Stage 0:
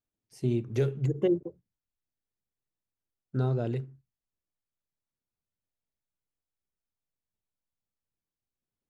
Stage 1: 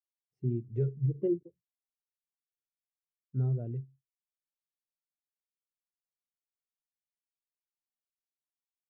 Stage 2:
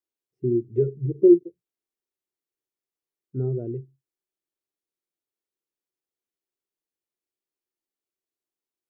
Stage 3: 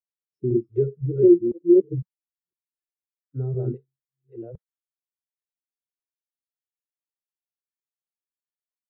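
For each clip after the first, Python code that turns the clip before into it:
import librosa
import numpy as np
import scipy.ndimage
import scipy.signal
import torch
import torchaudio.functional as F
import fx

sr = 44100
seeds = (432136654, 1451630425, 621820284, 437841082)

y1 = fx.bass_treble(x, sr, bass_db=4, treble_db=-11)
y1 = fx.spectral_expand(y1, sr, expansion=1.5)
y1 = y1 * 10.0 ** (-6.5 / 20.0)
y2 = fx.small_body(y1, sr, hz=(360.0,), ring_ms=25, db=16)
y3 = fx.reverse_delay(y2, sr, ms=506, wet_db=-1.0)
y3 = fx.noise_reduce_blind(y3, sr, reduce_db=23)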